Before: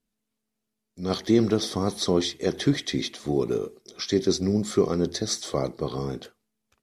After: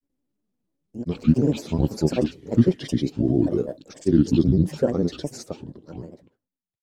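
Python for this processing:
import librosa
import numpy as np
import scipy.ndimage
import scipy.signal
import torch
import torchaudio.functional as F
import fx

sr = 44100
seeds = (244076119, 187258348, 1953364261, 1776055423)

y = fx.fade_out_tail(x, sr, length_s=2.22)
y = fx.granulator(y, sr, seeds[0], grain_ms=100.0, per_s=20.0, spray_ms=100.0, spread_st=7)
y = fx.tilt_shelf(y, sr, db=7.5, hz=680.0)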